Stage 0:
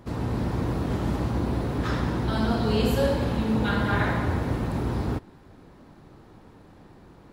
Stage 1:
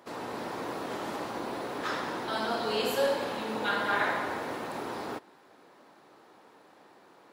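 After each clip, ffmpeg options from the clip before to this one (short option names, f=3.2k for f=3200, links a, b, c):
-af "highpass=490"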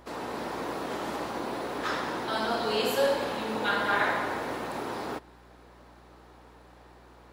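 -af "aeval=exprs='val(0)+0.00126*(sin(2*PI*60*n/s)+sin(2*PI*2*60*n/s)/2+sin(2*PI*3*60*n/s)/3+sin(2*PI*4*60*n/s)/4+sin(2*PI*5*60*n/s)/5)':c=same,volume=2dB"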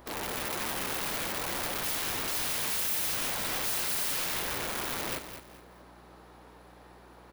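-filter_complex "[0:a]aeval=exprs='(mod(31.6*val(0)+1,2)-1)/31.6':c=same,aexciter=amount=1.6:drive=6.2:freq=10k,asplit=2[a][b];[b]aecho=0:1:211|422|633:0.316|0.0885|0.0248[c];[a][c]amix=inputs=2:normalize=0"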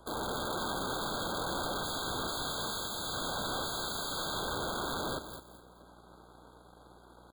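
-filter_complex "[0:a]acrossover=split=340|490|6500[a][b][c][d];[d]acompressor=threshold=-42dB:ratio=5[e];[a][b][c][e]amix=inputs=4:normalize=0,aeval=exprs='sgn(val(0))*max(abs(val(0))-0.0015,0)':c=same,afftfilt=real='re*eq(mod(floor(b*sr/1024/1600),2),0)':imag='im*eq(mod(floor(b*sr/1024/1600),2),0)':win_size=1024:overlap=0.75,volume=2.5dB"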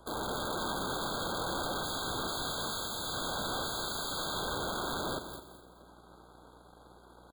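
-af "aecho=1:1:86|172|258|344|430|516:0.188|0.111|0.0656|0.0387|0.0228|0.0135"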